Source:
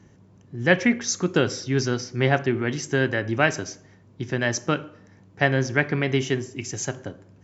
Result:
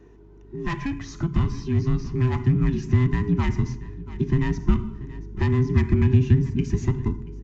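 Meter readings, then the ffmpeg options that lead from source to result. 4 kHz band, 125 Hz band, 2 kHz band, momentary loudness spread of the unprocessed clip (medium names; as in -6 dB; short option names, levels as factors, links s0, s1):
-12.0 dB, +7.0 dB, -12.5 dB, 11 LU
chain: -filter_complex "[0:a]afftfilt=real='real(if(between(b,1,1008),(2*floor((b-1)/24)+1)*24-b,b),0)':imag='imag(if(between(b,1,1008),(2*floor((b-1)/24)+1)*24-b,b),0)*if(between(b,1,1008),-1,1)':win_size=2048:overlap=0.75,aemphasis=mode=reproduction:type=75fm,acrossover=split=3200[s0][s1];[s1]acompressor=threshold=0.00708:ratio=4:attack=1:release=60[s2];[s0][s2]amix=inputs=2:normalize=0,aeval=exprs='val(0)+0.00178*(sin(2*PI*50*n/s)+sin(2*PI*2*50*n/s)/2+sin(2*PI*3*50*n/s)/3+sin(2*PI*4*50*n/s)/4+sin(2*PI*5*50*n/s)/5)':c=same,acrossover=split=190|1100[s3][s4][s5];[s5]acrusher=bits=3:mode=log:mix=0:aa=0.000001[s6];[s3][s4][s6]amix=inputs=3:normalize=0,asoftclip=type=tanh:threshold=0.141,asplit=2[s7][s8];[s8]aecho=0:1:682:0.0708[s9];[s7][s9]amix=inputs=2:normalize=0,acompressor=threshold=0.0355:ratio=3,aresample=16000,aresample=44100,asubboost=boost=11:cutoff=190"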